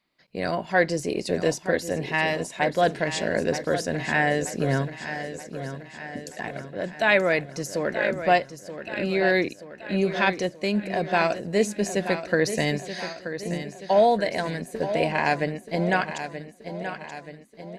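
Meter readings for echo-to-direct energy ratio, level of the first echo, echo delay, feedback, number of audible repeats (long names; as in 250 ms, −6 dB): −9.0 dB, −10.5 dB, 929 ms, 54%, 5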